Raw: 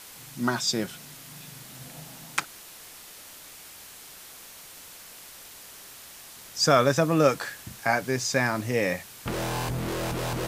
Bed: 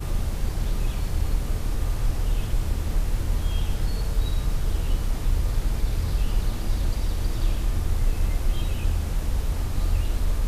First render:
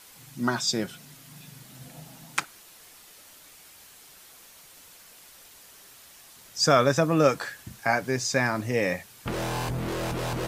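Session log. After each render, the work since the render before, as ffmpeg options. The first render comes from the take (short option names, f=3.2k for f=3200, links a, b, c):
-af "afftdn=nr=6:nf=-46"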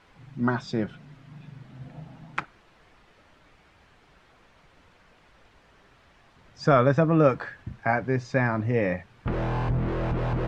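-af "lowpass=2k,lowshelf=f=130:g=10.5"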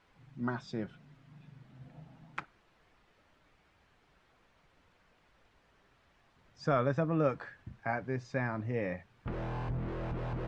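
-af "volume=-10dB"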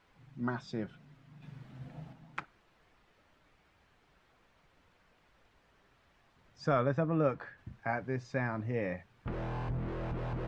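-filter_complex "[0:a]asettb=1/sr,asplit=3[a][b][c];[a]atrim=end=1.424[d];[b]atrim=start=1.42:end=2.13,asetpts=PTS-STARTPTS,afade=t=in:d=0.004:c=qsin,afade=t=out:st=0.706:d=0.004:c=qsin,acontrast=30[e];[c]atrim=start=2.126[f];[d][e]acrossfade=d=0.004:c1=hsin:c2=qsin[g];[g][f]acrossfade=d=0.004:c1=qsin:c2=hsin,asettb=1/sr,asplit=3[h][i][j];[h]atrim=end=6.824[k];[i]atrim=start=6.82:end=7.58,asetpts=PTS-STARTPTS,afade=t=in:d=0.004:c=qsin,afade=t=out:st=0.756:d=0.004:c=qsin,highshelf=f=4.9k:g=-9[l];[j]atrim=start=7.576[m];[k][l]acrossfade=d=0.004:c1=hsin:c2=qsin[n];[n][m]acrossfade=d=0.004:c1=qsin:c2=hsin"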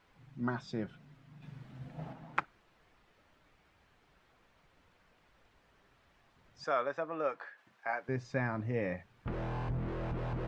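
-filter_complex "[0:a]asplit=3[a][b][c];[a]afade=t=out:st=1.98:d=0.02[d];[b]equalizer=f=690:w=0.34:g=10,afade=t=in:st=1.98:d=0.02,afade=t=out:st=2.39:d=0.02[e];[c]afade=t=in:st=2.39:d=0.02[f];[d][e][f]amix=inputs=3:normalize=0,asettb=1/sr,asplit=3[g][h][i];[g]atrim=end=6.644[j];[h]atrim=start=6.64:end=8.09,asetpts=PTS-STARTPTS,afade=t=in:d=0.004:c=qsin,afade=t=out:st=1.446:d=0.004:c=qsin,highpass=580[k];[i]atrim=start=8.086[l];[j][k]acrossfade=d=0.004:c1=hsin:c2=qsin[m];[m][l]acrossfade=d=0.004:c1=qsin:c2=hsin"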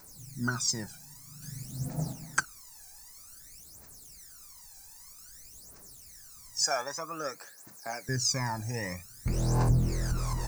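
-af "aexciter=amount=15:drive=10:freq=5.2k,aphaser=in_gain=1:out_gain=1:delay=1.3:decay=0.77:speed=0.52:type=triangular"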